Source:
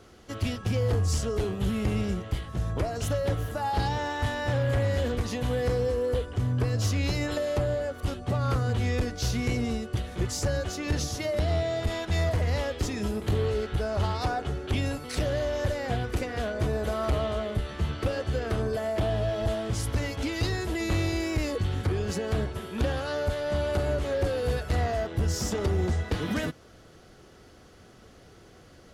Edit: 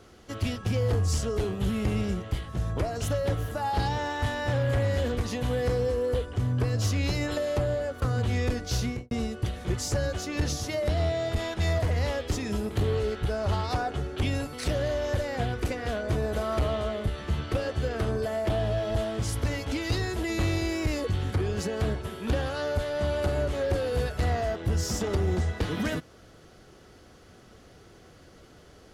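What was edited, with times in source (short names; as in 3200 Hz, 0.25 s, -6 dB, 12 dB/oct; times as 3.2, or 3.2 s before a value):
8.02–8.53 cut
9.33–9.62 studio fade out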